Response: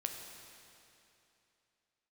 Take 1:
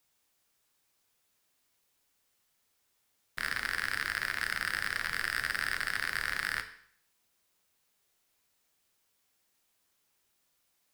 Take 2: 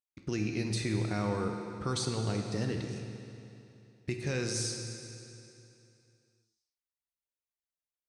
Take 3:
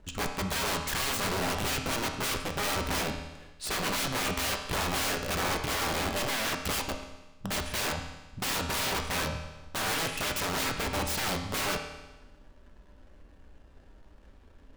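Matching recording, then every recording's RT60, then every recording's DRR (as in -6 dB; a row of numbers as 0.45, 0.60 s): 2; 0.60, 2.9, 1.1 s; 7.5, 3.0, 3.5 dB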